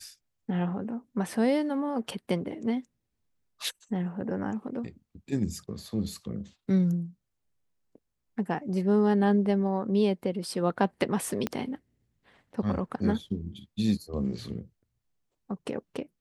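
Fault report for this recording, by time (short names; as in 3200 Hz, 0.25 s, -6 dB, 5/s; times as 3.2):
11.47 pop -15 dBFS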